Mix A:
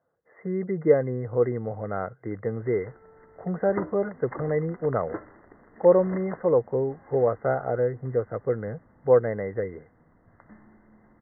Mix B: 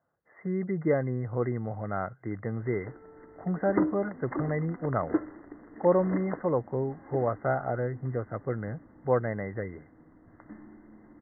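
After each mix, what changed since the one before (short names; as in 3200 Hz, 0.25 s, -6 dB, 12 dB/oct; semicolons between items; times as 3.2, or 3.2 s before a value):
speech: add bell 470 Hz -10 dB 0.49 oct; background: add bell 300 Hz +13 dB 0.44 oct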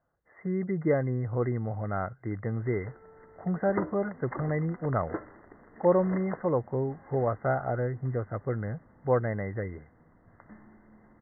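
speech: remove HPF 110 Hz; background: add bell 300 Hz -13 dB 0.44 oct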